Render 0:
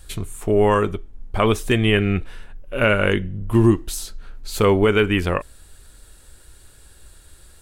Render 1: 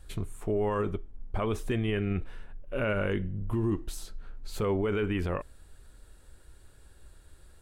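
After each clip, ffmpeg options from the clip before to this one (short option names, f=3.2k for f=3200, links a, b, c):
-af "highshelf=f=2.3k:g=-9.5,alimiter=limit=-15dB:level=0:latency=1:release=25,volume=-5.5dB"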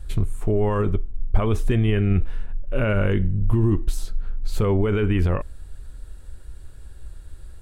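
-af "lowshelf=f=140:g=12,volume=4.5dB"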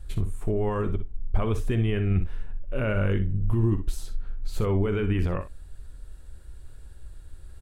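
-af "areverse,acompressor=mode=upward:threshold=-33dB:ratio=2.5,areverse,aecho=1:1:51|62:0.158|0.266,volume=-5dB"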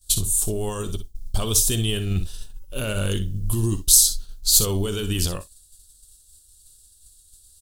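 -af "aexciter=amount=14.1:drive=9.6:freq=3.5k,agate=range=-33dB:threshold=-22dB:ratio=3:detection=peak"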